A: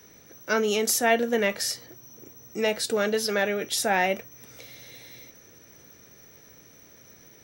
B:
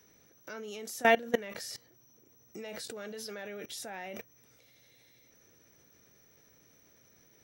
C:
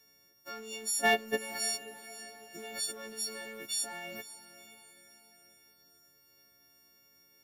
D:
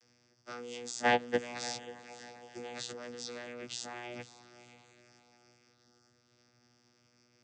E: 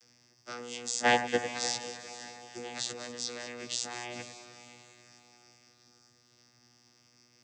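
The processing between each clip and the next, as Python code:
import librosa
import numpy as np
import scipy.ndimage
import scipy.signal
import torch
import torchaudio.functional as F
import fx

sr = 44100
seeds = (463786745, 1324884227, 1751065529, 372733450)

y1 = fx.level_steps(x, sr, step_db=21)
y2 = fx.freq_snap(y1, sr, grid_st=4)
y2 = fx.leveller(y2, sr, passes=1)
y2 = fx.echo_diffused(y2, sr, ms=519, feedback_pct=47, wet_db=-14.5)
y2 = y2 * 10.0 ** (-6.5 / 20.0)
y3 = fx.high_shelf(y2, sr, hz=4700.0, db=4.5)
y3 = fx.vocoder(y3, sr, bands=16, carrier='saw', carrier_hz=121.0)
y3 = y3 * 10.0 ** (-1.0 / 20.0)
y4 = fx.high_shelf(y3, sr, hz=3800.0, db=8.5)
y4 = fx.echo_alternate(y4, sr, ms=100, hz=2100.0, feedback_pct=73, wet_db=-10)
y4 = y4 * 10.0 ** (1.5 / 20.0)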